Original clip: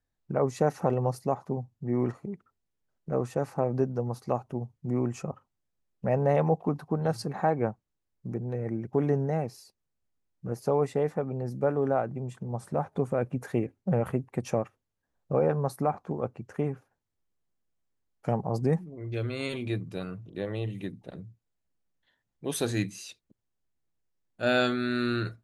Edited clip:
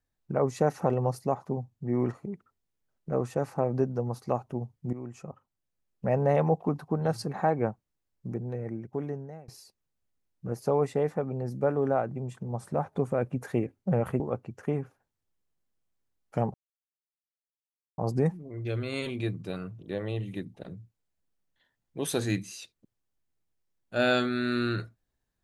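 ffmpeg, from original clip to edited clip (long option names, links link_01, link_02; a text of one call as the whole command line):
ffmpeg -i in.wav -filter_complex "[0:a]asplit=5[link_01][link_02][link_03][link_04][link_05];[link_01]atrim=end=4.93,asetpts=PTS-STARTPTS,afade=type=out:start_time=4.926:duration=0.004:curve=hsin:silence=0.199526[link_06];[link_02]atrim=start=4.93:end=9.48,asetpts=PTS-STARTPTS,afade=type=in:duration=1.12:silence=0.199526,afade=type=out:start_time=3.34:duration=1.21:silence=0.0668344[link_07];[link_03]atrim=start=9.48:end=14.202,asetpts=PTS-STARTPTS,afade=type=in:duration=0.004:curve=hsin:silence=0.0668344[link_08];[link_04]atrim=start=16.108:end=18.45,asetpts=PTS-STARTPTS,afade=type=out:start_time=2.338:duration=0.004:curve=hsin,apad=pad_dur=1.44[link_09];[link_05]atrim=start=18.45,asetpts=PTS-STARTPTS,afade=type=in:duration=0.004:curve=hsin[link_10];[link_06][link_07][link_08]concat=n=3:v=0:a=1[link_11];[link_09][link_10]concat=n=2:v=0:a=1[link_12];[link_11][link_12]acrossfade=duration=0.004:curve1=hsin:curve2=hsin" out.wav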